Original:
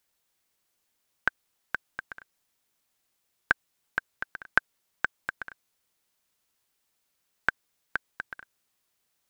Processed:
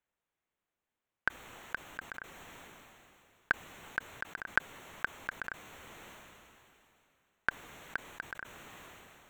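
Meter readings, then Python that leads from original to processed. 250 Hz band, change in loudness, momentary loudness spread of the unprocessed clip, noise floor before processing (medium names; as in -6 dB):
-2.0 dB, -6.5 dB, 15 LU, -77 dBFS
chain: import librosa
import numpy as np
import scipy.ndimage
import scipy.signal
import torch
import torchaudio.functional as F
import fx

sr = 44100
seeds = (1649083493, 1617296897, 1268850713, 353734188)

y = fx.wiener(x, sr, points=9)
y = fx.sustainer(y, sr, db_per_s=21.0)
y = y * librosa.db_to_amplitude(-5.5)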